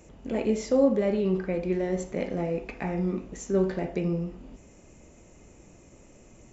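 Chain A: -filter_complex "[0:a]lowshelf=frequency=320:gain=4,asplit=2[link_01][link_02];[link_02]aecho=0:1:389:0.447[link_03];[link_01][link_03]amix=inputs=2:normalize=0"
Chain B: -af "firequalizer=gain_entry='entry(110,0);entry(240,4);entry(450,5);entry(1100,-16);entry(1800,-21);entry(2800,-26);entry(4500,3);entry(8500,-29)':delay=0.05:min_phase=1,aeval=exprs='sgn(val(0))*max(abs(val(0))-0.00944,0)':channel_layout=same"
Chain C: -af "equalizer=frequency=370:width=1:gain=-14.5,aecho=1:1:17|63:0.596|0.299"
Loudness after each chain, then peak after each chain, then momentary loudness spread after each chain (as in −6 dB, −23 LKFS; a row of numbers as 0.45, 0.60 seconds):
−25.5, −25.5, −34.0 LKFS; −9.5, −8.0, −19.0 dBFS; 10, 11, 8 LU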